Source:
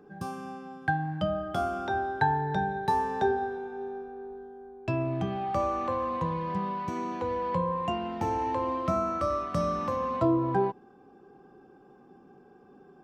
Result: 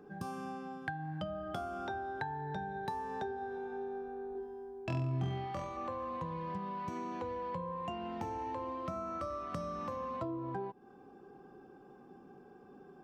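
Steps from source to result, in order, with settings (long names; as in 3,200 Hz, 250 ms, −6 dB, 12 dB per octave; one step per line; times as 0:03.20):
downward compressor 6 to 1, threshold −36 dBFS, peak gain reduction 15 dB
0:04.33–0:05.77: flutter between parallel walls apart 4 metres, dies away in 0.56 s
level −1 dB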